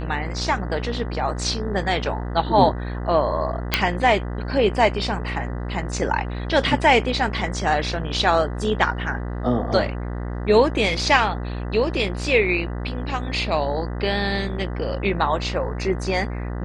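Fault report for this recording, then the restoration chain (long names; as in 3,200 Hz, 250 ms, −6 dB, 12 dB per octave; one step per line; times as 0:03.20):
mains buzz 60 Hz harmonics 33 −28 dBFS
0:03.74: click −2 dBFS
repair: click removal
hum removal 60 Hz, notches 33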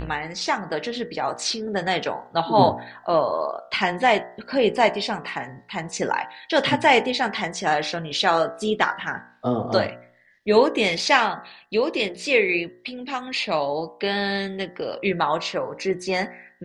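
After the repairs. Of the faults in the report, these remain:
none of them is left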